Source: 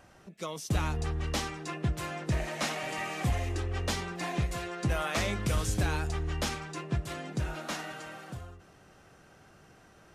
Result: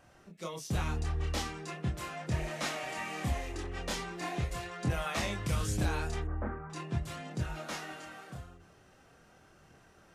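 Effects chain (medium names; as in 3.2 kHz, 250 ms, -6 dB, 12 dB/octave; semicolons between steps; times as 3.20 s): 6.24–6.70 s: steep low-pass 1.6 kHz 36 dB/octave; chorus voices 2, 0.41 Hz, delay 27 ms, depth 3.1 ms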